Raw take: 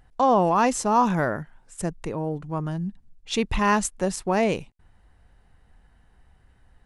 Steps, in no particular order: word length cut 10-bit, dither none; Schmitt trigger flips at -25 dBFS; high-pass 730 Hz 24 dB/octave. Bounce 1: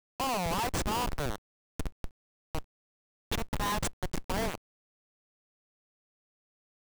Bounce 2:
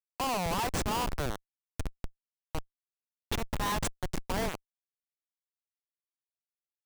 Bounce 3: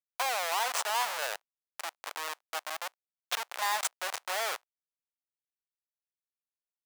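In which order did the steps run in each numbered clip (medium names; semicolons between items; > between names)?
high-pass > Schmitt trigger > word length cut; word length cut > high-pass > Schmitt trigger; Schmitt trigger > word length cut > high-pass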